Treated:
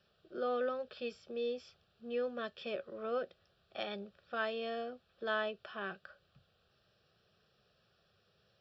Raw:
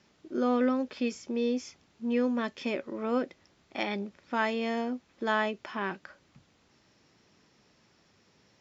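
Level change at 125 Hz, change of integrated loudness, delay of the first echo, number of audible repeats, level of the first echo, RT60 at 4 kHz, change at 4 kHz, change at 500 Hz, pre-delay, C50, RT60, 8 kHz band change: under -10 dB, -8.0 dB, no echo, no echo, no echo, no reverb, -4.5 dB, -5.0 dB, no reverb, no reverb, no reverb, no reading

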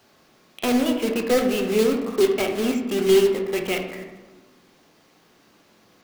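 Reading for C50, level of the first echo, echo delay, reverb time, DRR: 6.0 dB, no echo, no echo, 1.3 s, 2.5 dB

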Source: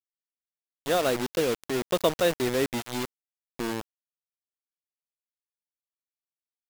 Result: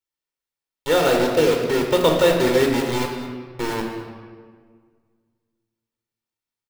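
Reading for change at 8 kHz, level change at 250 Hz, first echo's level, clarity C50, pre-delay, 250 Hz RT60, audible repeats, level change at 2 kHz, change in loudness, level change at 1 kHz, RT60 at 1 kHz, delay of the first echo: +4.0 dB, +8.5 dB, -15.0 dB, 4.0 dB, 3 ms, 2.0 s, 1, +8.0 dB, +8.0 dB, +8.0 dB, 1.6 s, 211 ms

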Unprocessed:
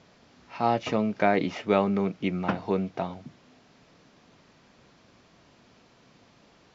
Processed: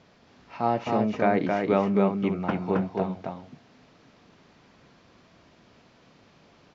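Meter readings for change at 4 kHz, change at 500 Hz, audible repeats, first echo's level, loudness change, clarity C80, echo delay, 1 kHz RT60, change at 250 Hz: -4.5 dB, +1.5 dB, 2, -18.0 dB, +1.0 dB, no reverb, 65 ms, no reverb, +2.0 dB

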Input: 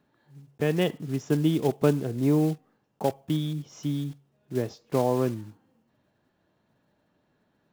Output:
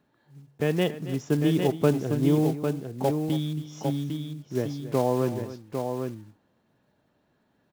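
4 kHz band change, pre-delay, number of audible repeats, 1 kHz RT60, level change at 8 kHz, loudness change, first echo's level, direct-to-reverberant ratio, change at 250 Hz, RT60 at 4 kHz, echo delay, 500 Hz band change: +1.0 dB, no reverb, 2, no reverb, +1.0 dB, 0.0 dB, -14.5 dB, no reverb, +1.0 dB, no reverb, 275 ms, +1.0 dB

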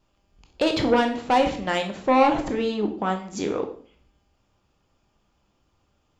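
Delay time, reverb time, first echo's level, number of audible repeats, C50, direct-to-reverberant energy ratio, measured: no echo, 0.45 s, no echo, no echo, 9.5 dB, 4.5 dB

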